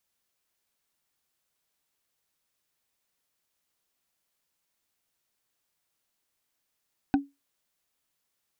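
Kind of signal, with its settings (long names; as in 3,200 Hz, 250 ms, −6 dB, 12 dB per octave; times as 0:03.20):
struck wood, lowest mode 280 Hz, decay 0.21 s, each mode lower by 6 dB, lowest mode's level −15.5 dB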